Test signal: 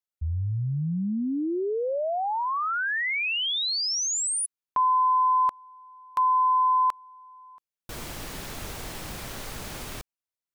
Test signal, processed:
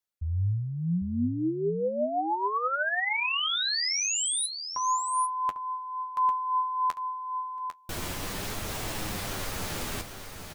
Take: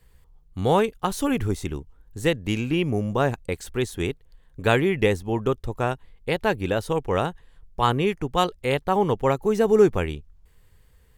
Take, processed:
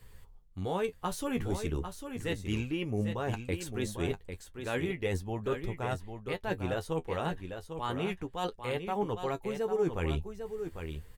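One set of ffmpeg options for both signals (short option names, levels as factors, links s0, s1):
-af "areverse,acompressor=threshold=0.0316:ratio=8:attack=3.8:release=408:knee=1:detection=rms,areverse,flanger=delay=9.3:depth=3.3:regen=36:speed=0.34:shape=sinusoidal,aecho=1:1:799:0.398,volume=2.24"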